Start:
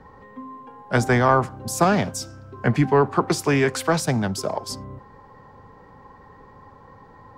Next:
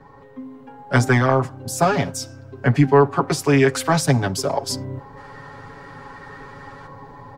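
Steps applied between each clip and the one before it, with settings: time-frequency box 5.17–6.87 s, 1.2–11 kHz +9 dB; comb 7.2 ms, depth 98%; level rider gain up to 6.5 dB; trim -2 dB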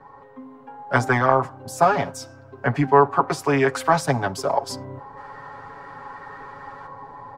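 peaking EQ 950 Hz +11.5 dB 2.1 oct; trim -8 dB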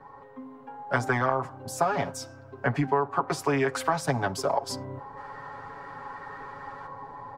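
compression 6:1, threshold -19 dBFS, peak gain reduction 10 dB; trim -2 dB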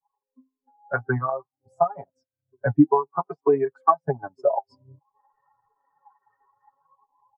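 transient shaper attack +4 dB, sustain -9 dB; flange 0.54 Hz, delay 0.6 ms, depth 9.7 ms, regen +53%; spectral contrast expander 2.5:1; trim +8 dB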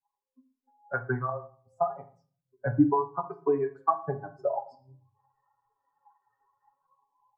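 reverberation RT60 0.45 s, pre-delay 4 ms, DRR 6.5 dB; trim -7 dB

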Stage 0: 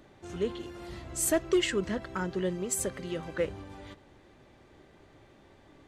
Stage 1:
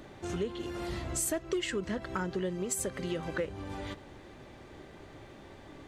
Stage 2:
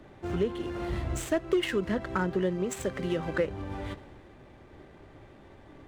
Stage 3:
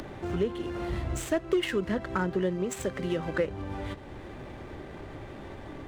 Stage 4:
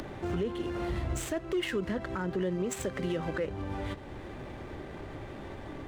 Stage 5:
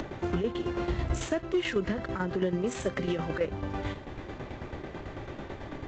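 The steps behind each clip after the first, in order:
compression 4:1, threshold -39 dBFS, peak gain reduction 15 dB; trim +7 dB
median filter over 9 samples; treble shelf 8.3 kHz -10 dB; three bands expanded up and down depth 40%; trim +5 dB
upward compressor, threshold -31 dBFS
peak limiter -23 dBFS, peak gain reduction 8 dB
tremolo saw down 9.1 Hz, depth 70%; trim +5.5 dB; AAC 32 kbps 16 kHz

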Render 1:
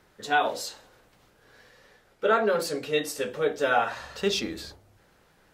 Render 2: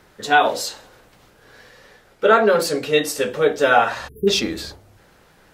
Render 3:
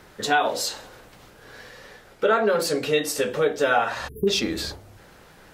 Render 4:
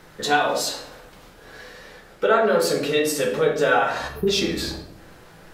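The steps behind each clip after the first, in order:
spectral selection erased 4.08–4.28 s, 460–9900 Hz; trim +8.5 dB
compression 2:1, threshold -27 dBFS, peak gain reduction 10 dB; trim +3 dB
simulated room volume 170 m³, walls mixed, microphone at 0.71 m

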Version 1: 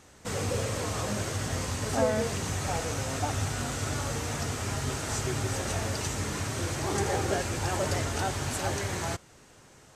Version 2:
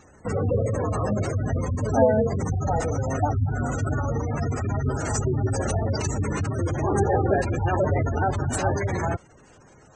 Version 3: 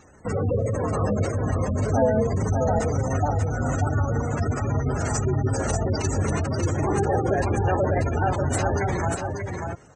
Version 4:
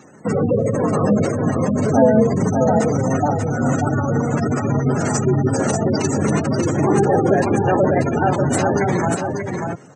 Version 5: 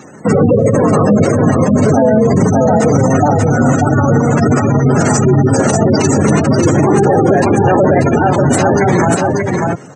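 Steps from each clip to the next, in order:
in parallel at -6 dB: bit crusher 6-bit; on the sum: spectral gate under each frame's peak -15 dB strong; trim +4.5 dB
in parallel at -0.5 dB: peak limiter -16.5 dBFS, peak gain reduction 10 dB; on the sum: delay 588 ms -5 dB; trim -5.5 dB
high-pass 130 Hz 24 dB/octave; peaking EQ 200 Hz +6 dB 2 oct; trim +5 dB
loudness maximiser +10.5 dB; trim -1 dB

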